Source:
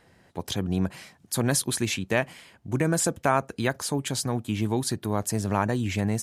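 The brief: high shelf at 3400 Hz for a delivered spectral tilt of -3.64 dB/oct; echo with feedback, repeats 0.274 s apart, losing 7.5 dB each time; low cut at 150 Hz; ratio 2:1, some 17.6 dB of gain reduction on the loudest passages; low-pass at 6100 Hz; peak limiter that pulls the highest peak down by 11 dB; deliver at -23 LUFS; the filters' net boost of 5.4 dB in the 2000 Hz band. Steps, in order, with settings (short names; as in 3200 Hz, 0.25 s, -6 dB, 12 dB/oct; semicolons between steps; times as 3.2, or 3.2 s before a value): HPF 150 Hz; LPF 6100 Hz; bell 2000 Hz +5.5 dB; high shelf 3400 Hz +5 dB; compressor 2:1, threshold -49 dBFS; limiter -30.5 dBFS; feedback echo 0.274 s, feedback 42%, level -7.5 dB; gain +19.5 dB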